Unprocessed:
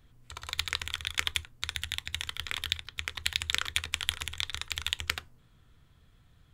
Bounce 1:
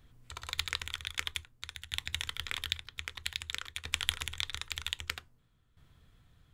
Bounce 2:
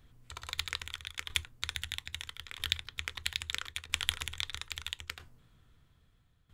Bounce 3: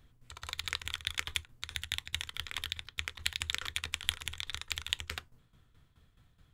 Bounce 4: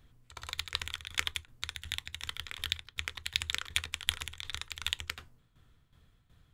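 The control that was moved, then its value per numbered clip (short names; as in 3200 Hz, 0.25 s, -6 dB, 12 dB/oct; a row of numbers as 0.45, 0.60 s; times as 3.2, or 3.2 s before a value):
tremolo, rate: 0.52, 0.77, 4.7, 2.7 Hz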